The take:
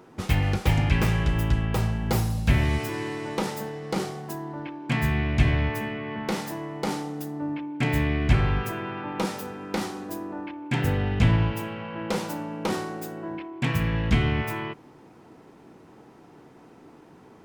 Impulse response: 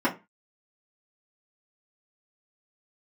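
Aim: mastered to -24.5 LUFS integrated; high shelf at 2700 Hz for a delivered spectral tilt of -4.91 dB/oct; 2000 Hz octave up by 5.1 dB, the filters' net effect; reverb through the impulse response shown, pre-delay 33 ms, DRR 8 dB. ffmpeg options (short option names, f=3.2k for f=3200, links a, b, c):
-filter_complex "[0:a]equalizer=f=2k:t=o:g=3.5,highshelf=f=2.7k:g=6,asplit=2[a][b];[1:a]atrim=start_sample=2205,adelay=33[c];[b][c]afir=irnorm=-1:irlink=0,volume=-21.5dB[d];[a][d]amix=inputs=2:normalize=0,volume=0.5dB"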